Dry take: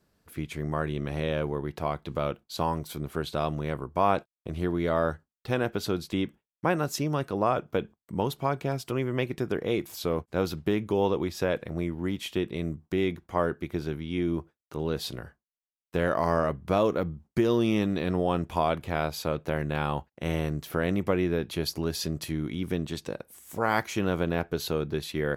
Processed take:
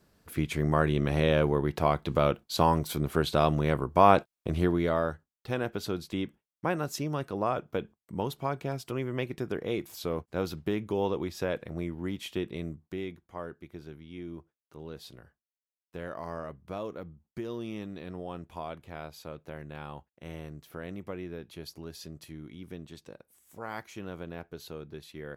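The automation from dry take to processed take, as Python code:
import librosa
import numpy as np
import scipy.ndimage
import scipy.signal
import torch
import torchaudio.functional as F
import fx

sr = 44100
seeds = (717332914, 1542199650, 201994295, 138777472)

y = fx.gain(x, sr, db=fx.line((4.55, 4.5), (5.1, -4.0), (12.55, -4.0), (13.28, -13.0)))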